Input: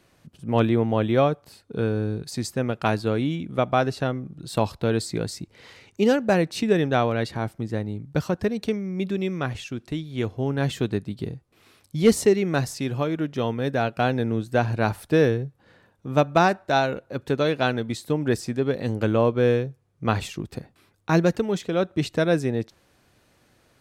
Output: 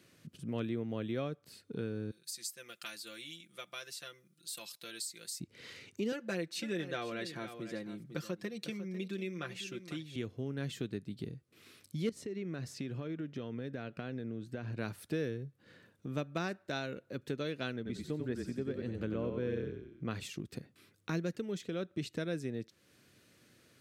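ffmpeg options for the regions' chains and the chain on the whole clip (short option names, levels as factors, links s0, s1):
-filter_complex "[0:a]asettb=1/sr,asplit=3[s0][s1][s2];[s0]atrim=end=2.114[s3];[s1]atrim=start=2.11:end=5.4,asetpts=PTS-STARTPTS,afade=t=in:d=0.004:c=qsin,afade=t=out:st=3.286:d=0.004:c=qsin,aderivative,aecho=1:1:5.8:0.87,atrim=end_sample=145089[s4];[s2]atrim=start=5.396[s5];[s3][s4]acrossfade=d=0.004:c1=hsin:c2=qsin[s6];[s6][s5]acrossfade=d=0.004:c1=qsin:c2=hsin,asettb=1/sr,asplit=3[s7][s8][s9];[s7]atrim=end=6.124[s10];[s8]atrim=start=6.12:end=10.16,asetpts=PTS-STARTPTS,afade=t=in:d=0.004:c=qsin,afade=t=out:st=4.036:d=0.004:c=qsin,highpass=f=410:p=1,aecho=1:1:5.8:0.77,atrim=end_sample=178164,aecho=1:1:499:0.188,atrim=end_sample=178164[s11];[s9]atrim=start=10.156[s12];[s10][s11]acrossfade=d=0.004:c1=hsin:c2=qsin[s13];[s13][s12]acrossfade=d=0.004:c1=qsin:c2=hsin,asettb=1/sr,asplit=3[s14][s15][s16];[s14]atrim=end=12.094[s17];[s15]atrim=start=12.09:end=14.78,asetpts=PTS-STARTPTS,afade=t=in:d=0.004:c=qsin,afade=t=out:st=2.686:d=0.004:c=qsin,lowpass=f=2700:p=1,acompressor=threshold=0.0631:ratio=10:attack=3.2:release=140:knee=1:detection=peak[s18];[s16]atrim=start=14.776[s19];[s17][s18]acrossfade=d=0.004:c1=hsin:c2=qsin[s20];[s20][s19]acrossfade=d=0.004:c1=qsin:c2=hsin,asettb=1/sr,asplit=3[s21][s22][s23];[s21]atrim=end=17.764[s24];[s22]atrim=start=17.76:end=20.11,asetpts=PTS-STARTPTS,afade=t=in:d=0.004:c=qsin,afade=t=out:st=2.346:d=0.004:c=qsin,highshelf=f=3300:g=-10.5,asplit=6[s25][s26][s27][s28][s29][s30];[s26]adelay=91,afreqshift=-32,volume=0.562[s31];[s27]adelay=182,afreqshift=-64,volume=0.219[s32];[s28]adelay=273,afreqshift=-96,volume=0.0851[s33];[s29]adelay=364,afreqshift=-128,volume=0.0335[s34];[s30]adelay=455,afreqshift=-160,volume=0.013[s35];[s25][s31][s32][s33][s34][s35]amix=inputs=6:normalize=0,atrim=end_sample=103635[s36];[s23]atrim=start=20.106[s37];[s24][s36]acrossfade=d=0.004:c1=hsin:c2=qsin[s38];[s38][s37]acrossfade=d=0.004:c1=qsin:c2=hsin,highpass=120,equalizer=f=830:t=o:w=0.9:g=-13,acompressor=threshold=0.00794:ratio=2,volume=0.891"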